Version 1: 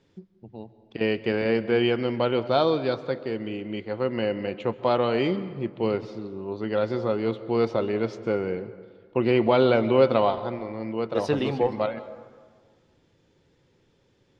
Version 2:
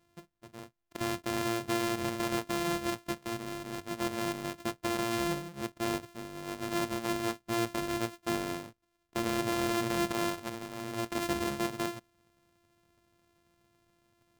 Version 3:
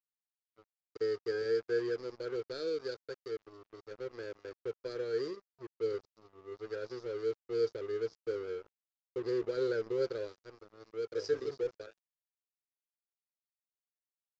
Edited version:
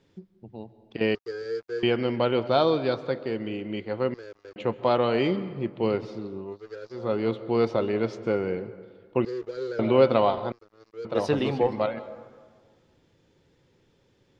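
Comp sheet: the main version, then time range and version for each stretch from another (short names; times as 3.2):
1
1.15–1.83 from 3
4.14–4.56 from 3
6.49–7.02 from 3, crossfade 0.24 s
9.25–9.79 from 3
10.52–11.05 from 3
not used: 2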